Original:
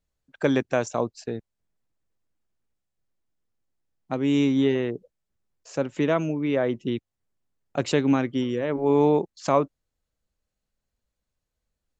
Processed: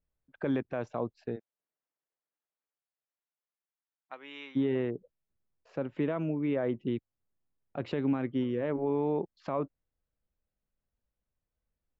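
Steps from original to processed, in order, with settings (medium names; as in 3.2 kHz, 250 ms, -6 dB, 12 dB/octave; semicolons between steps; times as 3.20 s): 1.35–4.55 s: high-pass 380 Hz -> 1.4 kHz 12 dB/octave; peak limiter -16 dBFS, peak gain reduction 7.5 dB; distance through air 390 m; trim -4 dB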